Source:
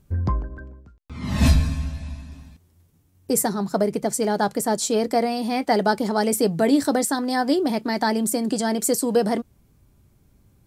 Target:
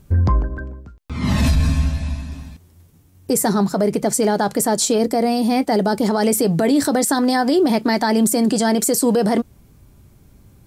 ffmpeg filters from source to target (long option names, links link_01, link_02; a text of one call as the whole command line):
ffmpeg -i in.wav -filter_complex "[0:a]asettb=1/sr,asplit=3[link_01][link_02][link_03];[link_01]atrim=end=4.984[link_04];[link_02]atrim=start=4.98:end=6.01,asetpts=PTS-STARTPTS,afade=type=in:duration=0.004:curve=qsin,afade=type=out:start_time=1.026:duration=0.004:curve=qsin,equalizer=frequency=1900:width=0.34:gain=-6.5[link_05];[link_03]atrim=start=6.006[link_06];[link_04][link_05]acrossfade=duration=0.004:curve1=hsin:curve2=qsin[link_07];[link_07][link_06]acrossfade=duration=0.004:curve1=qsin:curve2=hsin,alimiter=level_in=17dB:limit=-1dB:release=50:level=0:latency=1,volume=-8dB" out.wav